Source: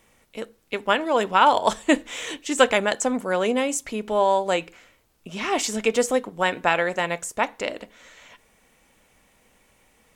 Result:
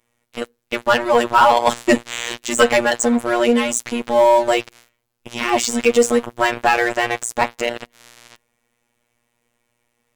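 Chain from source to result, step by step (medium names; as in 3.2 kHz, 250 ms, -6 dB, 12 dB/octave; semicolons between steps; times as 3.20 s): robot voice 119 Hz; waveshaping leveller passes 3; trim -1.5 dB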